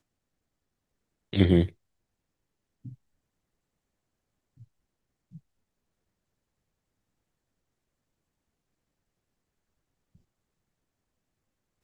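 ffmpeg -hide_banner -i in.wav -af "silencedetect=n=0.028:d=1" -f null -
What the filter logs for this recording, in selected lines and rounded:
silence_start: 0.00
silence_end: 1.33 | silence_duration: 1.33
silence_start: 1.66
silence_end: 11.84 | silence_duration: 10.18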